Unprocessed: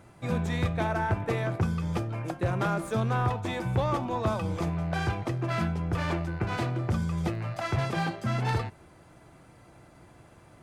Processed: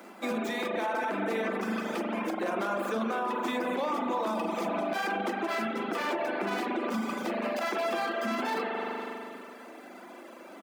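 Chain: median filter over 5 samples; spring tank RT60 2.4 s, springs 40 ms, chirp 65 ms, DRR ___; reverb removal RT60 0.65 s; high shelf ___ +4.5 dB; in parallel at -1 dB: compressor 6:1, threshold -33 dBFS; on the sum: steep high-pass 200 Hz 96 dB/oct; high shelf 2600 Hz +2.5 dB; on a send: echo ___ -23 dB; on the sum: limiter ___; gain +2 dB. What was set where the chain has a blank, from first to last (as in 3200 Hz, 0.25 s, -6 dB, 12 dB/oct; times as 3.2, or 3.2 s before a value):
0 dB, 8800 Hz, 0.528 s, -24.5 dBFS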